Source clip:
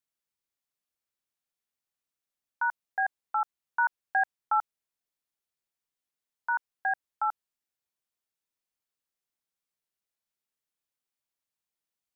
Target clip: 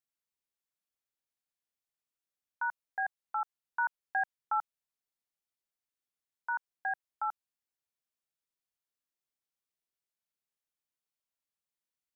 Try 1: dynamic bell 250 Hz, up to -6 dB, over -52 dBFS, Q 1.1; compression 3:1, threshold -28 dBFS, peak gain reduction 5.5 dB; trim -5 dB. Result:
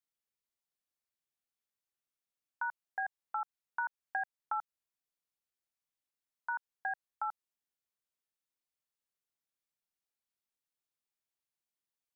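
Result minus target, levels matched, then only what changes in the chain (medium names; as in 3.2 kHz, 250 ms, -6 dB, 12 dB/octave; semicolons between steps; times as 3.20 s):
compression: peak gain reduction +5.5 dB
remove: compression 3:1, threshold -28 dBFS, peak gain reduction 5.5 dB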